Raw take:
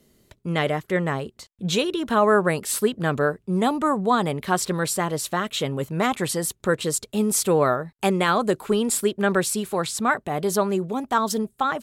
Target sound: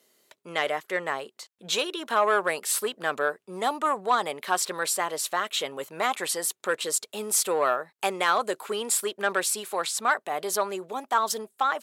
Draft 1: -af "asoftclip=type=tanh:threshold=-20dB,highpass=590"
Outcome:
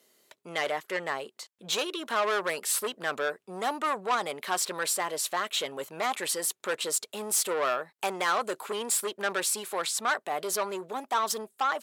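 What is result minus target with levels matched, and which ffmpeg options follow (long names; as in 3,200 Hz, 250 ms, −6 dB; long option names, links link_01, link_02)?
soft clipping: distortion +11 dB
-af "asoftclip=type=tanh:threshold=-10.5dB,highpass=590"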